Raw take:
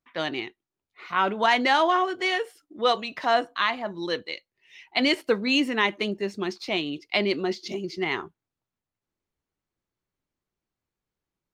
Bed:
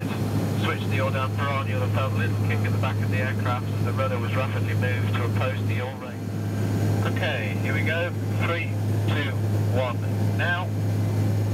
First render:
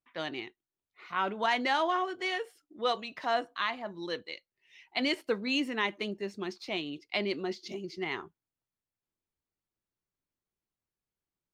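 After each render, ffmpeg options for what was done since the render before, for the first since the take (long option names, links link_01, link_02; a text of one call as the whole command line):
ffmpeg -i in.wav -af "volume=-7.5dB" out.wav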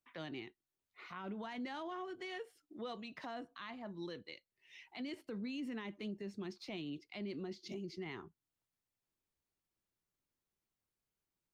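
ffmpeg -i in.wav -filter_complex "[0:a]acrossover=split=270[link_01][link_02];[link_02]acompressor=threshold=-53dB:ratio=2[link_03];[link_01][link_03]amix=inputs=2:normalize=0,alimiter=level_in=12dB:limit=-24dB:level=0:latency=1:release=33,volume=-12dB" out.wav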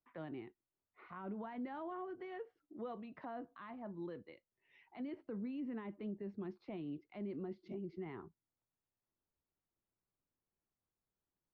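ffmpeg -i in.wav -af "lowpass=1300" out.wav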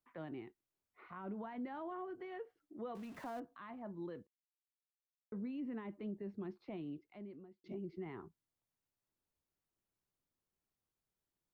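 ffmpeg -i in.wav -filter_complex "[0:a]asettb=1/sr,asplit=3[link_01][link_02][link_03];[link_01]atrim=end=2.954[link_04];[link_02]atrim=start=2.95:end=3.4,asetpts=PTS-STARTPTS,afade=type=in:duration=0.004:curve=qsin,afade=type=out:start_time=0.446:duration=0.004:curve=qsin,aeval=exprs='val(0)+0.5*0.00237*sgn(val(0))':channel_layout=same[link_05];[link_03]atrim=start=3.396[link_06];[link_04][link_05]acrossfade=duration=0.004:curve1=hsin:curve2=qsin[link_07];[link_07][link_06]acrossfade=duration=0.004:curve1=qsin:curve2=hsin,asplit=4[link_08][link_09][link_10][link_11];[link_08]atrim=end=4.27,asetpts=PTS-STARTPTS,afade=type=out:start_time=4.266:duration=0.004:curve=hsin[link_12];[link_09]atrim=start=4.27:end=5.32,asetpts=PTS-STARTPTS,volume=0[link_13];[link_10]atrim=start=5.32:end=7.64,asetpts=PTS-STARTPTS,afade=type=in:duration=0.004:curve=hsin,afade=type=out:start_time=1.48:duration=0.84[link_14];[link_11]atrim=start=7.64,asetpts=PTS-STARTPTS,afade=type=in:duration=0.004:curve=hsin[link_15];[link_12][link_13][link_14][link_15]concat=n=4:v=0:a=1" out.wav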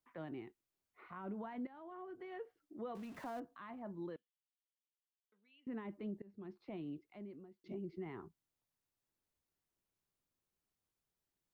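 ffmpeg -i in.wav -filter_complex "[0:a]asettb=1/sr,asplit=3[link_01][link_02][link_03];[link_01]atrim=end=4.164[link_04];[link_02]atrim=start=4.16:end=5.67,asetpts=PTS-STARTPTS,afade=type=in:duration=0.004:curve=qsin,afade=type=out:start_time=1.506:duration=0.004:curve=qsin,bandpass=frequency=3100:width_type=q:width=5[link_05];[link_03]atrim=start=5.666[link_06];[link_04][link_05]acrossfade=duration=0.004:curve1=hsin:curve2=qsin[link_07];[link_07][link_06]acrossfade=duration=0.004:curve1=qsin:curve2=hsin,asplit=3[link_08][link_09][link_10];[link_08]atrim=end=1.67,asetpts=PTS-STARTPTS,afade=type=out:start_time=1.666:duration=0.004:curve=hsin:silence=0.211349[link_11];[link_09]atrim=start=1.67:end=6.22,asetpts=PTS-STARTPTS,afade=type=in:duration=0.77:silence=0.211349,afade=type=out:start_time=4.546:duration=0.004:curve=hsin:silence=0.0794328[link_12];[link_10]atrim=start=6.22,asetpts=PTS-STARTPTS,afade=type=in:duration=0.71:curve=qsin:silence=0.0794328[link_13];[link_11][link_12][link_13]concat=n=3:v=0:a=1" out.wav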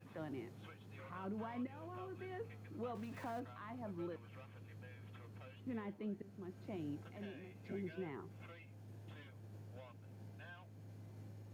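ffmpeg -i in.wav -i bed.wav -filter_complex "[1:a]volume=-31dB[link_01];[0:a][link_01]amix=inputs=2:normalize=0" out.wav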